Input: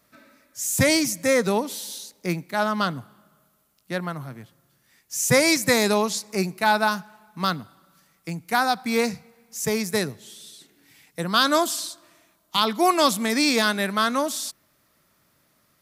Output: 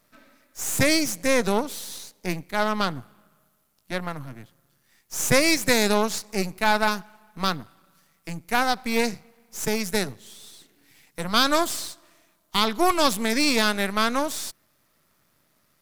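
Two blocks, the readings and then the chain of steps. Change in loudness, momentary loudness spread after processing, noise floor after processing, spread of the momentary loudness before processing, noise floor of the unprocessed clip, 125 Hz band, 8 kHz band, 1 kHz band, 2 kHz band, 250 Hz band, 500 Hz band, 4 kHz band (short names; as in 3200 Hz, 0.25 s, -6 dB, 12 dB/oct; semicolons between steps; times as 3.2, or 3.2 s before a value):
-1.0 dB, 15 LU, -67 dBFS, 16 LU, -66 dBFS, -2.5 dB, -1.5 dB, -1.5 dB, -0.5 dB, -1.0 dB, -1.5 dB, -0.5 dB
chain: half-wave gain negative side -12 dB; gain +1.5 dB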